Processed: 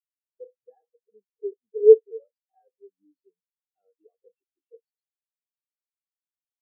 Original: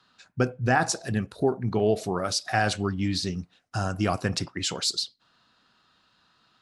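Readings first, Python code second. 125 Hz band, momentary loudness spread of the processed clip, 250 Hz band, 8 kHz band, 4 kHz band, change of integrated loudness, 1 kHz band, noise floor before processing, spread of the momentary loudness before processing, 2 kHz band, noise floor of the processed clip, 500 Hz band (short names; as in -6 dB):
under -40 dB, 21 LU, under -20 dB, under -40 dB, under -40 dB, +9.5 dB, under -40 dB, -66 dBFS, 8 LU, under -40 dB, under -85 dBFS, +6.5 dB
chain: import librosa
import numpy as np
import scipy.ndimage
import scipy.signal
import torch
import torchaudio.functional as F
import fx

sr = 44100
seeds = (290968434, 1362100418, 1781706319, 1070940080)

p1 = scipy.signal.sosfilt(scipy.signal.butter(2, 260.0, 'highpass', fs=sr, output='sos'), x)
p2 = fx.over_compress(p1, sr, threshold_db=-30.0, ratio=-0.5)
p3 = p1 + F.gain(torch.from_numpy(p2), -1.5).numpy()
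p4 = fx.small_body(p3, sr, hz=(460.0, 2700.0), ring_ms=40, db=16)
y = fx.spectral_expand(p4, sr, expansion=4.0)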